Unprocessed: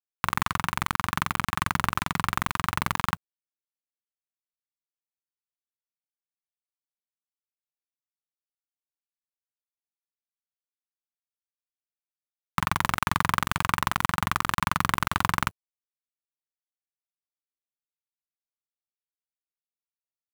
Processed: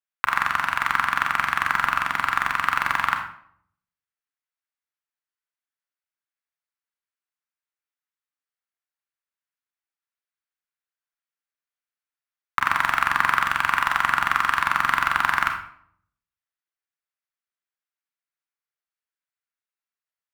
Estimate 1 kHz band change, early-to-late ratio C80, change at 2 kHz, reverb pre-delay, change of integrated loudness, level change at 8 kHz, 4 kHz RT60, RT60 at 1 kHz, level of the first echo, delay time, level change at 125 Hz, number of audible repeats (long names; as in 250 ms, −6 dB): +4.5 dB, 10.0 dB, +8.0 dB, 29 ms, +5.0 dB, −3.5 dB, 0.45 s, 0.60 s, no echo audible, no echo audible, −11.0 dB, no echo audible